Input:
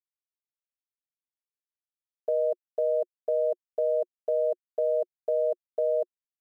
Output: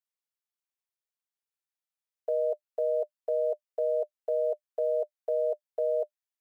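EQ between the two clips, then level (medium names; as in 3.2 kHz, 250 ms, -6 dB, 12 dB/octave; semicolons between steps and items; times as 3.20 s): high-pass 440 Hz 24 dB/octave; band-stop 600 Hz, Q 20; 0.0 dB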